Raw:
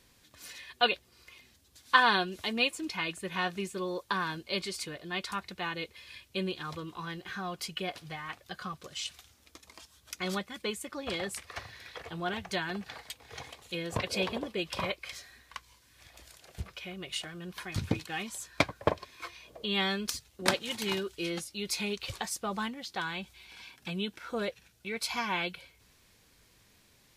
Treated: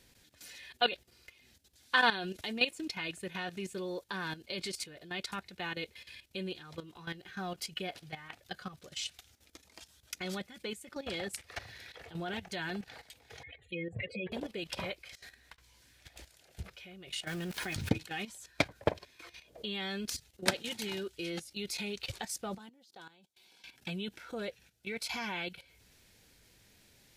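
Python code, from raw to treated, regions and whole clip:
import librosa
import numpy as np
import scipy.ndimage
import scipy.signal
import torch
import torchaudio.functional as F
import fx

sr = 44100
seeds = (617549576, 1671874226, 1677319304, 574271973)

y = fx.chain(x, sr, fx.spec_expand(power=2.6),
    fx.peak_eq(hz=1800.0, db=14.5, octaves=0.73),
    fx.fixed_phaser(hz=2400.0, stages=4), at=(13.43, 14.32))
y = fx.chain(y, sr, fx.over_compress(threshold_db=-52.0, ratio=-0.5),
    fx.doubler(ms=15.0, db=-13.0),
    fx.doppler_dist(depth_ms=0.21), at=(15.15, 16.29))
y = fx.chain(y, sr, fx.low_shelf(hz=130.0, db=-3.0),
    fx.sample_gate(floor_db=-50.0),
    fx.env_flatten(amount_pct=70), at=(17.27, 17.89))
y = fx.chain(y, sr, fx.highpass(hz=220.0, slope=12),
    fx.peak_eq(hz=2100.0, db=-10.0, octaves=1.2),
    fx.level_steps(step_db=20), at=(22.58, 23.64))
y = fx.peak_eq(y, sr, hz=1100.0, db=-10.0, octaves=0.28)
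y = fx.level_steps(y, sr, step_db=13)
y = F.gain(torch.from_numpy(y), 1.5).numpy()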